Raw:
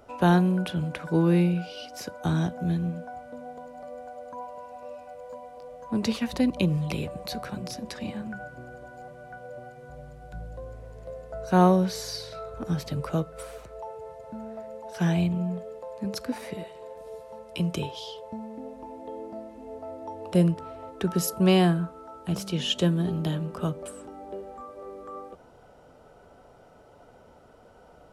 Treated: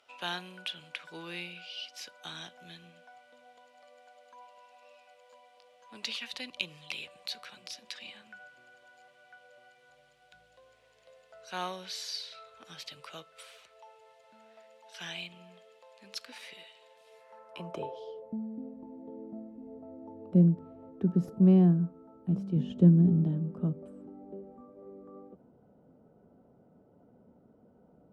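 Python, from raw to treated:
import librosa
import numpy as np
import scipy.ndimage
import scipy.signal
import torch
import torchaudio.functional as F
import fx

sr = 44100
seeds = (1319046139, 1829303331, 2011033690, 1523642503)

y = fx.tracing_dist(x, sr, depth_ms=0.023)
y = fx.low_shelf(y, sr, hz=370.0, db=6.0, at=(22.56, 23.24))
y = fx.filter_sweep_bandpass(y, sr, from_hz=3100.0, to_hz=210.0, start_s=17.03, end_s=18.41, q=1.9)
y = fx.high_shelf(y, sr, hz=7300.0, db=8.0)
y = y * librosa.db_to_amplitude(2.0)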